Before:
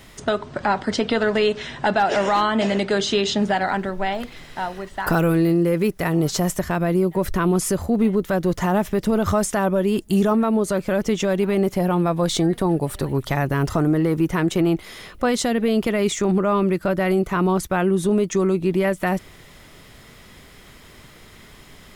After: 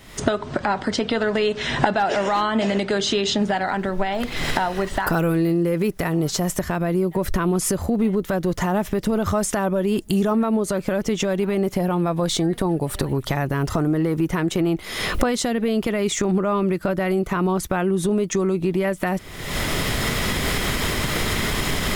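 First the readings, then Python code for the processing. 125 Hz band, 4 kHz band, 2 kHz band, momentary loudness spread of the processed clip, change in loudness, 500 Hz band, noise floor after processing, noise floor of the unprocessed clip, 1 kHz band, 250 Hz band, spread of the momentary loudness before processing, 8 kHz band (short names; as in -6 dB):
-0.5 dB, +3.0 dB, +1.0 dB, 4 LU, -1.0 dB, -1.5 dB, -36 dBFS, -46 dBFS, -1.0 dB, -1.0 dB, 5 LU, +2.5 dB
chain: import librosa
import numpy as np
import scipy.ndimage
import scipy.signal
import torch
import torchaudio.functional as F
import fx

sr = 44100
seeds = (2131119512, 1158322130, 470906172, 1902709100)

y = fx.recorder_agc(x, sr, target_db=-11.5, rise_db_per_s=55.0, max_gain_db=30)
y = y * librosa.db_to_amplitude(-2.0)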